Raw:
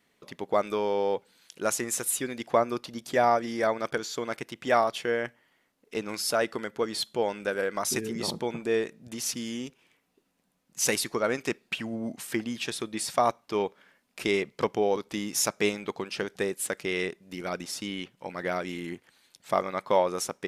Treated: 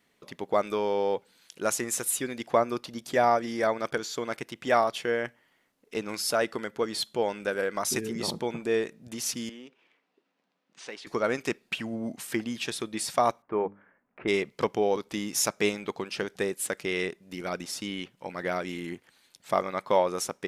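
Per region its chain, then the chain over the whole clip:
9.49–11.07 s: compression 2:1, threshold -43 dBFS + careless resampling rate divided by 3×, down none, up hold + band-pass 290–3700 Hz
13.42–14.28 s: inverse Chebyshev low-pass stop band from 7.4 kHz, stop band 70 dB + hum notches 50/100/150/200/250/300 Hz
whole clip: none

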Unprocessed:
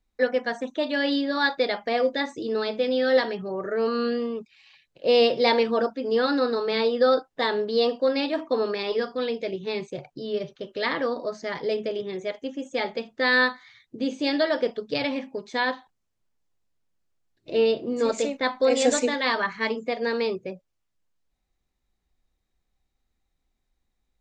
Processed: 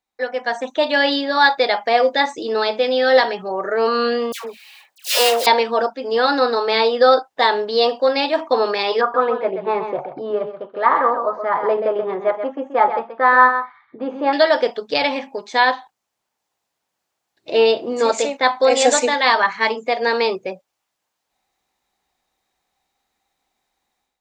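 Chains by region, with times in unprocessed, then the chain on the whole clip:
4.32–5.47 s: block-companded coder 3-bit + high-pass 580 Hz 6 dB/octave + phase dispersion lows, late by 127 ms, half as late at 1.3 kHz
9.01–14.33 s: resonant low-pass 1.2 kHz, resonance Q 3.4 + delay 130 ms -8.5 dB
whole clip: high-pass 650 Hz 6 dB/octave; peaking EQ 820 Hz +7.5 dB 0.68 oct; level rider gain up to 11 dB

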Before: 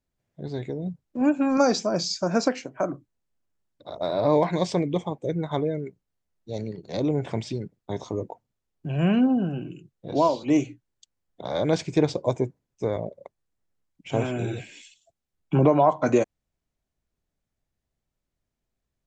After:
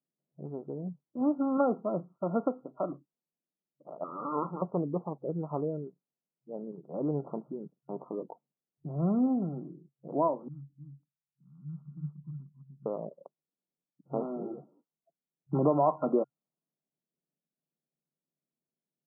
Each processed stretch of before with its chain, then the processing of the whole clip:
4.04–4.62 s: comb filter that takes the minimum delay 0.77 ms + Gaussian low-pass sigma 2.2 samples + bass shelf 170 Hz -5 dB
10.48–12.86 s: Chebyshev band-stop 140–2400 Hz, order 3 + delay 302 ms -3.5 dB
whole clip: local Wiener filter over 9 samples; level-controlled noise filter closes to 630 Hz, open at -20.5 dBFS; FFT band-pass 130–1400 Hz; trim -6.5 dB

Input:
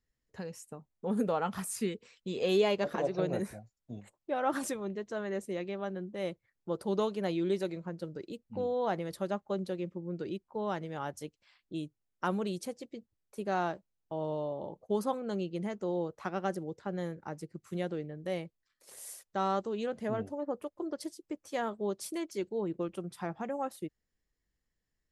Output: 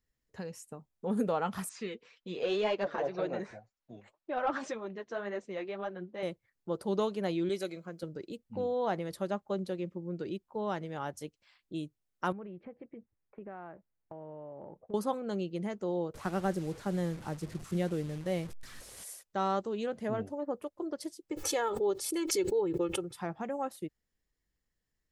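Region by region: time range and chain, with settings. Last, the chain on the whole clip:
1.69–6.23 s: steep low-pass 7 kHz + flange 1.9 Hz, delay 2.7 ms, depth 6.2 ms, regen +35% + overdrive pedal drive 12 dB, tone 2.2 kHz, clips at -19.5 dBFS
7.49–8.03 s: tilt EQ +2 dB/octave + comb of notches 920 Hz
12.32–14.94 s: steep low-pass 2.3 kHz + compression 5:1, threshold -42 dBFS
16.14–19.04 s: one-bit delta coder 64 kbps, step -45 dBFS + bass shelf 170 Hz +11.5 dB
21.31–23.17 s: comb 2.3 ms, depth 83% + swell ahead of each attack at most 50 dB/s
whole clip: none

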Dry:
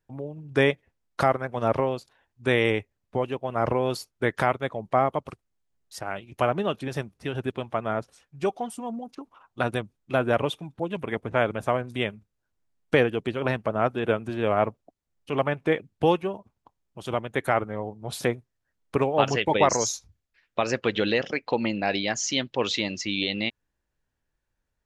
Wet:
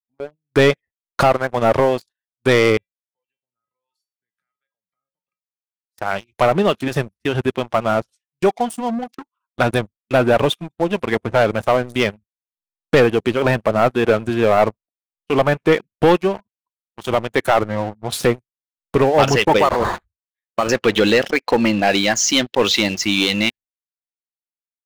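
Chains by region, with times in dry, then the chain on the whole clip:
2.77–5.98 s: harmonic tremolo 1.3 Hz, crossover 430 Hz + compression, threshold -38 dBFS + feedback comb 180 Hz, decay 0.32 s, harmonics odd, mix 80%
19.59–20.69 s: peaking EQ 1.2 kHz +6 dB 0.32 oct + compression 1.5:1, threshold -28 dBFS + decimation joined by straight lines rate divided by 8×
whole clip: spectral noise reduction 17 dB; gate -46 dBFS, range -19 dB; waveshaping leveller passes 3

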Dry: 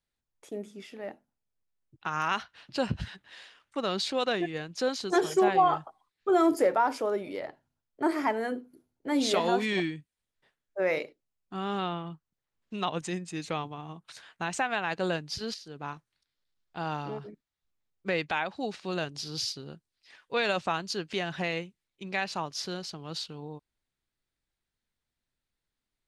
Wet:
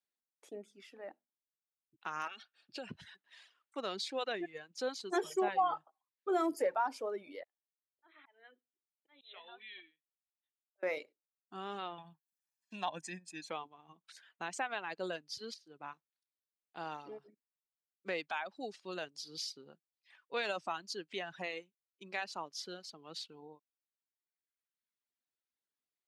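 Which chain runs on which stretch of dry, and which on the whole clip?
2.27–2.89 s: dynamic bell 2.8 kHz, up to +6 dB, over -46 dBFS, Q 1.2 + compression 10:1, threshold -30 dBFS + comb of notches 1 kHz
7.43–10.83 s: differentiator + slow attack 217 ms + brick-wall FIR low-pass 4.1 kHz
11.98–13.51 s: comb 1.2 ms, depth 71% + tape noise reduction on one side only encoder only
whole clip: reverb removal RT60 1.5 s; high-pass 270 Hz 12 dB/octave; trim -7.5 dB

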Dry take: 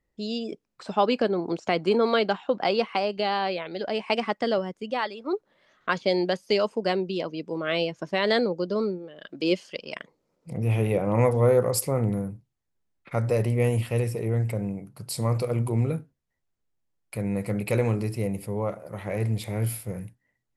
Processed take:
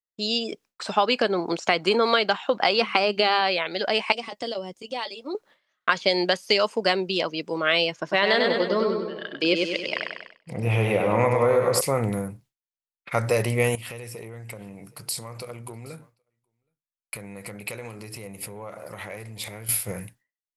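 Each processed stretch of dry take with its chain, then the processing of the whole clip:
2.81–3.41 s: hum notches 50/100/150/200 Hz + small resonant body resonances 220/340/1300/2400 Hz, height 6 dB, ringing for 20 ms
4.12–5.35 s: peaking EQ 1.5 kHz -15 dB 1.3 oct + compression 2:1, threshold -32 dBFS + comb of notches 210 Hz
7.96–11.81 s: low-pass 2.8 kHz 6 dB/octave + feedback delay 98 ms, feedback 51%, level -4.5 dB
13.75–19.69 s: compression, threshold -37 dBFS + delay 771 ms -21.5 dB
whole clip: expander -48 dBFS; tilt shelf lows -7 dB, about 650 Hz; compression, threshold -21 dBFS; trim +5 dB

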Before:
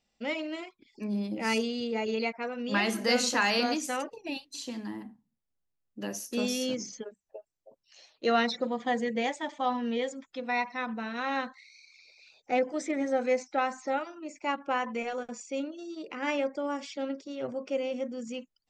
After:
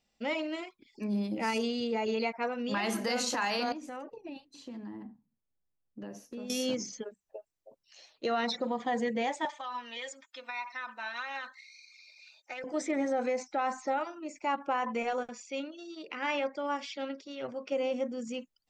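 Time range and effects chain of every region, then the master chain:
3.72–6.50 s: low-pass 1 kHz 6 dB/octave + compression 4:1, threshold -39 dBFS
9.45–12.64 s: high-pass 910 Hz + compression 12:1, threshold -34 dBFS + comb 3.3 ms, depth 55%
15.29–17.72 s: low-pass 4.3 kHz + tilt shelf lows -5.5 dB, about 1.3 kHz
whole clip: dynamic bell 900 Hz, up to +6 dB, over -42 dBFS, Q 1.5; peak limiter -22.5 dBFS

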